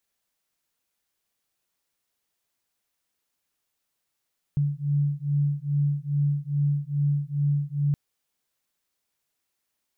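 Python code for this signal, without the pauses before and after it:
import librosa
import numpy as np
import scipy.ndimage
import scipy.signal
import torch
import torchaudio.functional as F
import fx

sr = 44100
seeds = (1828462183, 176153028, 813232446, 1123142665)

y = fx.two_tone_beats(sr, length_s=3.37, hz=143.0, beat_hz=2.4, level_db=-25.0)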